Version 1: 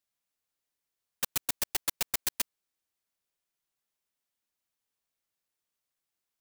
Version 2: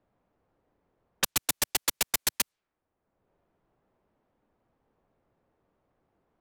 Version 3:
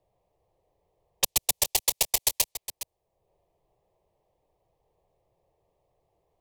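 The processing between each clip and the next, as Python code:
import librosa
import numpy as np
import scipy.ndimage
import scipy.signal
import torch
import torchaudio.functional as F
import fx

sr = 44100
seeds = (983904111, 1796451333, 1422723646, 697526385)

y1 = fx.env_lowpass(x, sr, base_hz=680.0, full_db=-30.0)
y1 = fx.band_squash(y1, sr, depth_pct=70)
y1 = y1 * librosa.db_to_amplitude(5.5)
y2 = fx.fixed_phaser(y1, sr, hz=600.0, stages=4)
y2 = y2 + 10.0 ** (-12.5 / 20.0) * np.pad(y2, (int(413 * sr / 1000.0), 0))[:len(y2)]
y2 = y2 * librosa.db_to_amplitude(4.0)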